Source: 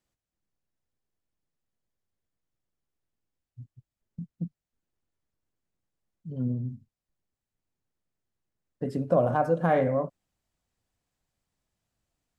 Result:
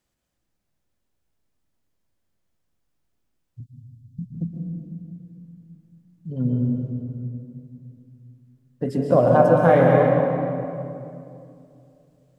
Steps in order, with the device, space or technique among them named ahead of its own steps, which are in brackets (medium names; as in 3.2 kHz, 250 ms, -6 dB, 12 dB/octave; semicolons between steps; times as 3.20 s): stairwell (reverberation RT60 2.6 s, pre-delay 115 ms, DRR -0.5 dB); 3.60–4.35 s: inverse Chebyshev band-stop 610–1500 Hz, stop band 60 dB; trim +5.5 dB